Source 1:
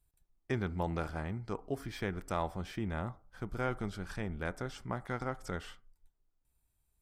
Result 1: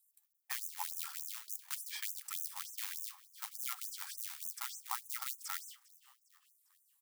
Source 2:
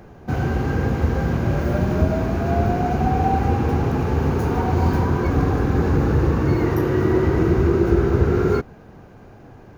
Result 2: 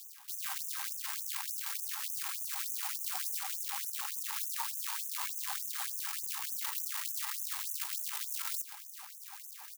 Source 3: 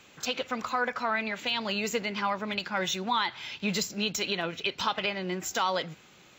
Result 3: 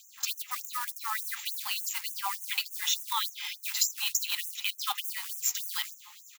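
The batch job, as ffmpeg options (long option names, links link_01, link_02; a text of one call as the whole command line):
ffmpeg -i in.wav -filter_complex "[0:a]bandreject=frequency=1500:width=7.4,afreqshift=-15,equalizer=frequency=260:width_type=o:width=2.5:gain=8,areverse,acompressor=threshold=-27dB:ratio=6,areverse,acrusher=bits=4:mode=log:mix=0:aa=0.000001,aemphasis=mode=production:type=50kf,asplit=2[link_01][link_02];[link_02]acrusher=bits=5:dc=4:mix=0:aa=0.000001,volume=-10.5dB[link_03];[link_01][link_03]amix=inputs=2:normalize=0,asplit=5[link_04][link_05][link_06][link_07][link_08];[link_05]adelay=402,afreqshift=-50,volume=-22dB[link_09];[link_06]adelay=804,afreqshift=-100,volume=-27.7dB[link_10];[link_07]adelay=1206,afreqshift=-150,volume=-33.4dB[link_11];[link_08]adelay=1608,afreqshift=-200,volume=-39dB[link_12];[link_04][link_09][link_10][link_11][link_12]amix=inputs=5:normalize=0,afftfilt=real='re*gte(b*sr/1024,740*pow(6000/740,0.5+0.5*sin(2*PI*3.4*pts/sr)))':imag='im*gte(b*sr/1024,740*pow(6000/740,0.5+0.5*sin(2*PI*3.4*pts/sr)))':win_size=1024:overlap=0.75,volume=-1.5dB" out.wav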